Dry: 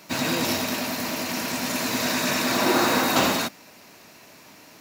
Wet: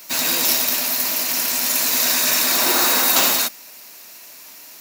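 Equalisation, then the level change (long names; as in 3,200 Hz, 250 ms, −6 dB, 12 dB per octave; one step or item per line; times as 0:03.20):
RIAA equalisation recording
0.0 dB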